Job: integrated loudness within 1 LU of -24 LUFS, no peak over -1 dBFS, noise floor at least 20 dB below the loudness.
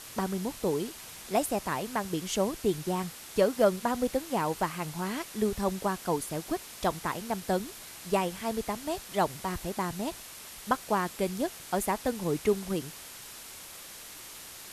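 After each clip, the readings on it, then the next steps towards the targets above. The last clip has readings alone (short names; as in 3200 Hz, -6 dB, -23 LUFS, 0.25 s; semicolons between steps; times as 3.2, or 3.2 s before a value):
noise floor -46 dBFS; noise floor target -51 dBFS; loudness -31.0 LUFS; peak -12.5 dBFS; loudness target -24.0 LUFS
-> denoiser 6 dB, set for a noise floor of -46 dBFS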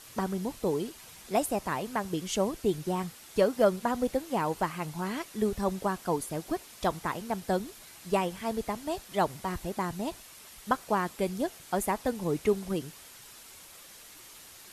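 noise floor -51 dBFS; noise floor target -52 dBFS
-> denoiser 6 dB, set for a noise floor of -51 dBFS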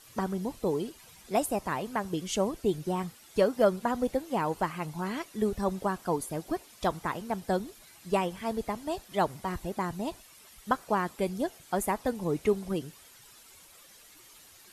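noise floor -55 dBFS; loudness -31.5 LUFS; peak -12.5 dBFS; loudness target -24.0 LUFS
-> gain +7.5 dB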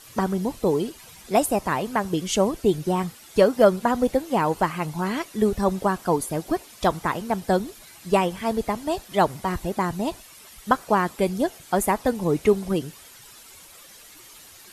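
loudness -24.0 LUFS; peak -5.0 dBFS; noise floor -48 dBFS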